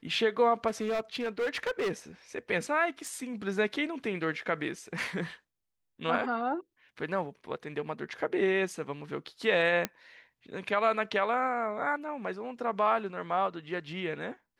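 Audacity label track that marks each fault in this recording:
0.670000	1.920000	clipped -27 dBFS
3.070000	3.070000	pop
9.850000	9.850000	pop -13 dBFS

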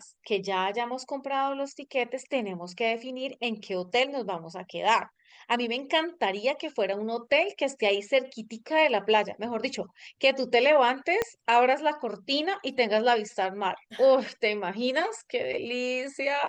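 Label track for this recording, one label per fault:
11.220000	11.220000	pop -12 dBFS

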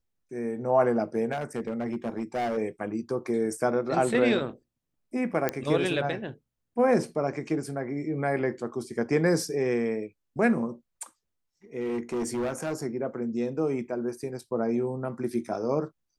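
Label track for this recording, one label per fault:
1.310000	2.580000	clipped -25.5 dBFS
5.490000	5.490000	pop -11 dBFS
11.790000	12.830000	clipped -26 dBFS

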